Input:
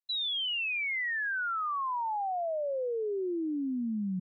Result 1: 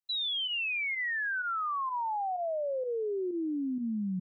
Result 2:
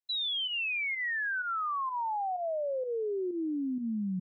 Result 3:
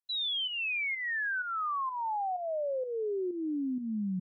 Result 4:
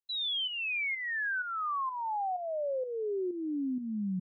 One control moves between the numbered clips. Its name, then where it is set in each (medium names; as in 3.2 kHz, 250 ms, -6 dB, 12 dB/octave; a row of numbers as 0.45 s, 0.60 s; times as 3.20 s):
volume shaper, release: 69 ms, 115 ms, 266 ms, 409 ms